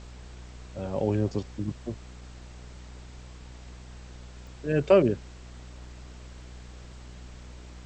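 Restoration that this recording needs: de-click; de-hum 61.3 Hz, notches 11; noise print and reduce 30 dB

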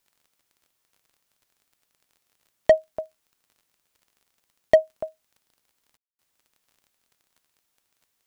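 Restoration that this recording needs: clip repair -8 dBFS; de-click; room tone fill 5.97–6.19 s

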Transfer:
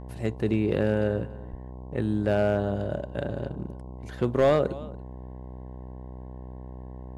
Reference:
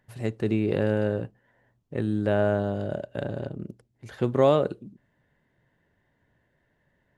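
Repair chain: clip repair -14 dBFS; de-hum 63.2 Hz, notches 17; 1.50–1.62 s: high-pass 140 Hz 24 dB/octave; inverse comb 285 ms -20 dB

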